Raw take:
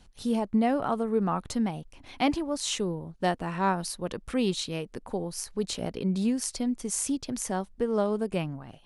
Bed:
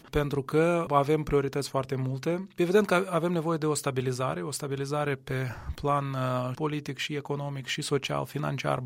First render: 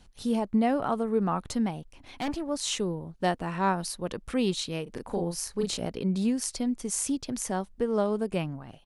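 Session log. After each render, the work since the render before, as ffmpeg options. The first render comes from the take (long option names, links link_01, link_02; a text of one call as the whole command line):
ffmpeg -i in.wav -filter_complex "[0:a]asettb=1/sr,asplit=3[link_01][link_02][link_03];[link_01]atrim=end=1.734[link_04];[link_02]atrim=start=1.73:end=2.49,asetpts=PTS-STARTPTS,afade=type=in:duration=0.004:curve=qsin,afade=type=out:start_time=0.756:duration=0.004:curve=qsin,aeval=exprs='(tanh(22.4*val(0)+0.35)-tanh(0.35))/22.4':channel_layout=same[link_05];[link_03]atrim=start=2.486[link_06];[link_04][link_05]acrossfade=duration=0.004:curve1=hsin:curve2=qsin[link_07];[link_07][link_06]acrossfade=duration=0.004:curve1=qsin:curve2=hsin,asplit=3[link_08][link_09][link_10];[link_08]afade=type=out:start_time=4.86:duration=0.02[link_11];[link_09]asplit=2[link_12][link_13];[link_13]adelay=35,volume=-3dB[link_14];[link_12][link_14]amix=inputs=2:normalize=0,afade=type=in:start_time=4.86:duration=0.02,afade=type=out:start_time=5.76:duration=0.02[link_15];[link_10]afade=type=in:start_time=5.76:duration=0.02[link_16];[link_11][link_15][link_16]amix=inputs=3:normalize=0" out.wav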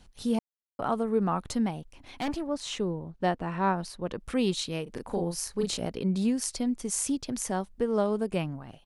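ffmpeg -i in.wav -filter_complex "[0:a]asettb=1/sr,asplit=3[link_01][link_02][link_03];[link_01]atrim=end=2.474[link_04];[link_02]atrim=start=2.47:end=4.2,asetpts=PTS-STARTPTS,afade=type=in:duration=0.004:curve=qsin,afade=type=out:start_time=1.726:duration=0.004:curve=qsin,lowpass=frequency=2600:poles=1[link_05];[link_03]atrim=start=4.196[link_06];[link_04][link_05]acrossfade=duration=0.004:curve1=hsin:curve2=qsin[link_07];[link_07][link_06]acrossfade=duration=0.004:curve1=qsin:curve2=hsin,asplit=3[link_08][link_09][link_10];[link_08]atrim=end=0.39,asetpts=PTS-STARTPTS,afade=type=out:start_time=0.386:duration=0.004:curve=hsin[link_11];[link_09]atrim=start=0.39:end=0.79,asetpts=PTS-STARTPTS,volume=0[link_12];[link_10]atrim=start=0.79,asetpts=PTS-STARTPTS,afade=type=in:duration=0.004:curve=hsin[link_13];[link_11][link_12][link_13]concat=n=3:v=0:a=1" out.wav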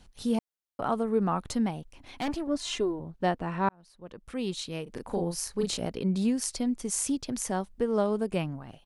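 ffmpeg -i in.wav -filter_complex "[0:a]asettb=1/sr,asplit=3[link_01][link_02][link_03];[link_01]atrim=end=2.474[link_04];[link_02]atrim=start=2.47:end=3,asetpts=PTS-STARTPTS,afade=type=in:duration=0.004:curve=qsin,afade=type=out:start_time=0.526:duration=0.004:curve=qsin,aecho=1:1:2.9:0.81,atrim=end_sample=23373[link_05];[link_03]atrim=start=2.996[link_06];[link_04][link_05]acrossfade=duration=0.004:curve1=hsin:curve2=qsin[link_07];[link_07][link_06]acrossfade=duration=0.004:curve1=qsin:curve2=hsin,asplit=2[link_08][link_09];[link_08]atrim=end=3.69,asetpts=PTS-STARTPTS,afade=type=out:start_time=3.686:duration=0.004:curve=hsin[link_10];[link_09]atrim=start=3.69,asetpts=PTS-STARTPTS,afade=type=in:duration=1.45[link_11];[link_10][link_11]concat=n=2:v=0:a=1" out.wav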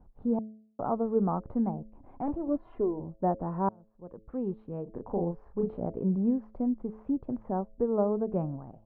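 ffmpeg -i in.wav -af "lowpass=frequency=1000:width=0.5412,lowpass=frequency=1000:width=1.3066,bandreject=frequency=108.7:width_type=h:width=4,bandreject=frequency=217.4:width_type=h:width=4,bandreject=frequency=326.1:width_type=h:width=4,bandreject=frequency=434.8:width_type=h:width=4,bandreject=frequency=543.5:width_type=h:width=4,bandreject=frequency=652.2:width_type=h:width=4" out.wav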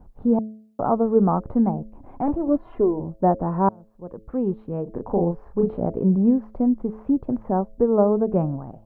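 ffmpeg -i in.wav -af "volume=9dB" out.wav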